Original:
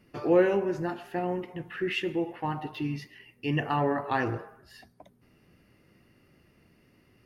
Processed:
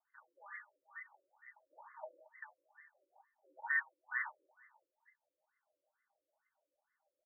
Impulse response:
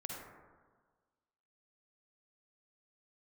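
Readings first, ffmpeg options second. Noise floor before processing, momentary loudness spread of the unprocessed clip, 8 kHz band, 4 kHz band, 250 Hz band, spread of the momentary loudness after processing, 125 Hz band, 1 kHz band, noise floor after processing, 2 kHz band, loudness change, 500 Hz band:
−64 dBFS, 14 LU, can't be measured, below −40 dB, below −40 dB, 25 LU, below −40 dB, −19.5 dB, below −85 dBFS, −4.0 dB, −12.0 dB, −32.5 dB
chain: -filter_complex "[0:a]afwtdn=0.0251,equalizer=frequency=1500:width=3.6:gain=-8,aecho=1:1:3.3:0.49,acompressor=threshold=-37dB:ratio=12,aecho=1:1:224|448|672:0.133|0.0413|0.0128[link_01];[1:a]atrim=start_sample=2205,atrim=end_sample=3969[link_02];[link_01][link_02]afir=irnorm=-1:irlink=0,lowpass=frequency=2300:width_type=q:width=0.5098,lowpass=frequency=2300:width_type=q:width=0.6013,lowpass=frequency=2300:width_type=q:width=0.9,lowpass=frequency=2300:width_type=q:width=2.563,afreqshift=-2700,afftfilt=real='re*between(b*sr/1024,400*pow(1500/400,0.5+0.5*sin(2*PI*2.2*pts/sr))/1.41,400*pow(1500/400,0.5+0.5*sin(2*PI*2.2*pts/sr))*1.41)':imag='im*between(b*sr/1024,400*pow(1500/400,0.5+0.5*sin(2*PI*2.2*pts/sr))/1.41,400*pow(1500/400,0.5+0.5*sin(2*PI*2.2*pts/sr))*1.41)':win_size=1024:overlap=0.75,volume=11dB"

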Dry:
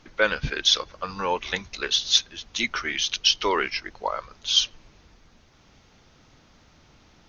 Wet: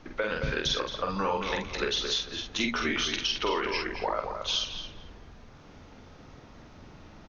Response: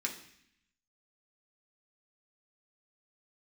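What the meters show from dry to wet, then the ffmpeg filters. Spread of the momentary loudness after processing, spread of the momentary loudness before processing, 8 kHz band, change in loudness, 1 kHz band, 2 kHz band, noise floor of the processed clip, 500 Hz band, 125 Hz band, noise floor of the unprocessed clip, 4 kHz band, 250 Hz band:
5 LU, 11 LU, can't be measured, −5.5 dB, −2.5 dB, −4.5 dB, −51 dBFS, −1.5 dB, 0.0 dB, −57 dBFS, −7.5 dB, +2.5 dB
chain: -filter_complex "[0:a]highshelf=frequency=2000:gain=-11.5,bandreject=frequency=60:width_type=h:width=6,bandreject=frequency=120:width_type=h:width=6,bandreject=frequency=180:width_type=h:width=6,bandreject=frequency=240:width_type=h:width=6,alimiter=limit=-20dB:level=0:latency=1:release=157,acrossover=split=1000|2700|5500[link_01][link_02][link_03][link_04];[link_01]acompressor=threshold=-35dB:ratio=4[link_05];[link_02]acompressor=threshold=-43dB:ratio=4[link_06];[link_03]acompressor=threshold=-39dB:ratio=4[link_07];[link_04]acompressor=threshold=-49dB:ratio=4[link_08];[link_05][link_06][link_07][link_08]amix=inputs=4:normalize=0,asplit=2[link_09][link_10];[link_10]adelay=47,volume=-4dB[link_11];[link_09][link_11]amix=inputs=2:normalize=0,asplit=2[link_12][link_13];[link_13]adelay=222,lowpass=frequency=2600:poles=1,volume=-6dB,asplit=2[link_14][link_15];[link_15]adelay=222,lowpass=frequency=2600:poles=1,volume=0.25,asplit=2[link_16][link_17];[link_17]adelay=222,lowpass=frequency=2600:poles=1,volume=0.25[link_18];[link_12][link_14][link_16][link_18]amix=inputs=4:normalize=0,asplit=2[link_19][link_20];[1:a]atrim=start_sample=2205[link_21];[link_20][link_21]afir=irnorm=-1:irlink=0,volume=-18dB[link_22];[link_19][link_22]amix=inputs=2:normalize=0,volume=5.5dB"

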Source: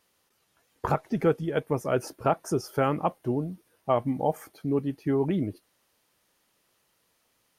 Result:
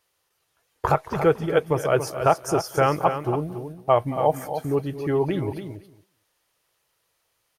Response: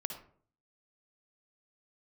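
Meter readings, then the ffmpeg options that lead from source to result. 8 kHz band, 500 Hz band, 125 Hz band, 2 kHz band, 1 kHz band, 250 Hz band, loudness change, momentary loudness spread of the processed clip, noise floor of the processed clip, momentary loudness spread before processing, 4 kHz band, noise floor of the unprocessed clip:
+7.0 dB, +5.5 dB, +4.0 dB, +7.0 dB, +6.5 dB, 0.0 dB, +5.0 dB, 10 LU, −73 dBFS, 6 LU, +7.0 dB, −71 dBFS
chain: -filter_complex "[0:a]equalizer=frequency=230:width_type=o:width=0.64:gain=-14.5,asplit=2[link_01][link_02];[link_02]aecho=0:1:225|450:0.141|0.0254[link_03];[link_01][link_03]amix=inputs=2:normalize=0,agate=range=-8dB:threshold=-54dB:ratio=16:detection=peak,asplit=2[link_04][link_05];[link_05]aecho=0:1:280:0.355[link_06];[link_04][link_06]amix=inputs=2:normalize=0,volume=6.5dB"

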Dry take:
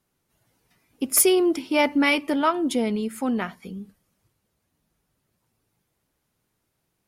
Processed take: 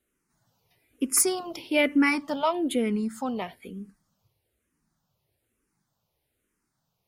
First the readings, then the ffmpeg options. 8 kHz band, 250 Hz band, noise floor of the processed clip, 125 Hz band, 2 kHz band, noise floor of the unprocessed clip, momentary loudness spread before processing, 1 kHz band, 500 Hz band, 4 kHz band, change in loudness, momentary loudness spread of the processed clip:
−2.0 dB, −3.5 dB, −79 dBFS, −2.5 dB, −2.5 dB, −76 dBFS, 15 LU, −4.5 dB, −5.0 dB, −5.0 dB, −3.5 dB, 16 LU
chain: -filter_complex "[0:a]asplit=2[link_01][link_02];[link_02]afreqshift=-1.1[link_03];[link_01][link_03]amix=inputs=2:normalize=1"

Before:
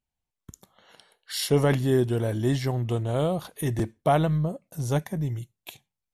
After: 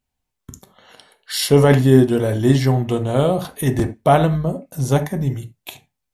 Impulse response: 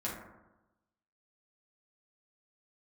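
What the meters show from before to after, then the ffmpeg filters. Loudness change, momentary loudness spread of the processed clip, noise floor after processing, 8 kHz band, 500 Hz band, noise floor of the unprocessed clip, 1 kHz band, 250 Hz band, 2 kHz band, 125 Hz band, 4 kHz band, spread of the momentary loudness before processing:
+9.0 dB, 12 LU, −79 dBFS, +7.5 dB, +9.0 dB, below −85 dBFS, +8.5 dB, +9.5 dB, +8.5 dB, +8.0 dB, +8.0 dB, 12 LU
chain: -filter_complex "[0:a]asplit=2[link_01][link_02];[1:a]atrim=start_sample=2205,afade=type=out:start_time=0.16:duration=0.01,atrim=end_sample=7497,asetrate=52920,aresample=44100[link_03];[link_02][link_03]afir=irnorm=-1:irlink=0,volume=-5.5dB[link_04];[link_01][link_04]amix=inputs=2:normalize=0,volume=5.5dB"

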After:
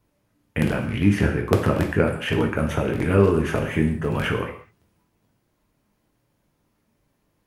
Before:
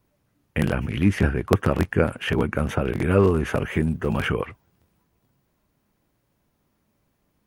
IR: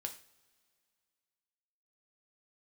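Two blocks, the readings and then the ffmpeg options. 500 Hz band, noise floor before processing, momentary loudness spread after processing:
+1.0 dB, −71 dBFS, 7 LU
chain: -filter_complex "[1:a]atrim=start_sample=2205,afade=type=out:start_time=0.18:duration=0.01,atrim=end_sample=8379,asetrate=27342,aresample=44100[link_01];[0:a][link_01]afir=irnorm=-1:irlink=0"

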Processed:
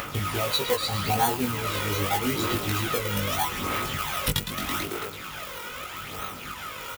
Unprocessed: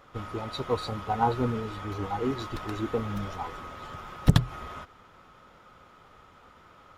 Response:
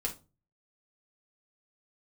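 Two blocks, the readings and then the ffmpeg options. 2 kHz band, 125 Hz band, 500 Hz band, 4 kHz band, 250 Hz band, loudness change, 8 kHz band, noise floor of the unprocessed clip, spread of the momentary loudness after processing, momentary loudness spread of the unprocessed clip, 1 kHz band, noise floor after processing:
+11.0 dB, −1.0 dB, +2.5 dB, +12.0 dB, +0.5 dB, +3.0 dB, +18.0 dB, −56 dBFS, 11 LU, 16 LU, +4.0 dB, −39 dBFS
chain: -filter_complex "[0:a]asplit=8[link_01][link_02][link_03][link_04][link_05][link_06][link_07][link_08];[link_02]adelay=110,afreqshift=49,volume=-13dB[link_09];[link_03]adelay=220,afreqshift=98,volume=-17.4dB[link_10];[link_04]adelay=330,afreqshift=147,volume=-21.9dB[link_11];[link_05]adelay=440,afreqshift=196,volume=-26.3dB[link_12];[link_06]adelay=550,afreqshift=245,volume=-30.7dB[link_13];[link_07]adelay=660,afreqshift=294,volume=-35.2dB[link_14];[link_08]adelay=770,afreqshift=343,volume=-39.6dB[link_15];[link_01][link_09][link_10][link_11][link_12][link_13][link_14][link_15]amix=inputs=8:normalize=0,aphaser=in_gain=1:out_gain=1:delay=2.1:decay=0.61:speed=0.8:type=sinusoidal,asplit=2[link_16][link_17];[link_17]acrusher=samples=34:mix=1:aa=0.000001:lfo=1:lforange=34:lforate=1.4,volume=-9dB[link_18];[link_16][link_18]amix=inputs=2:normalize=0,crystalizer=i=3:c=0,equalizer=frequency=2500:width_type=o:width=0.96:gain=8.5,acompressor=threshold=-29dB:ratio=3,highpass=frequency=85:poles=1,asplit=2[link_19][link_20];[link_20]adelay=20,volume=-2.5dB[link_21];[link_19][link_21]amix=inputs=2:normalize=0,asoftclip=type=tanh:threshold=-16.5dB,highshelf=frequency=11000:gain=8.5,acompressor=mode=upward:threshold=-32dB:ratio=2.5,volume=3.5dB"

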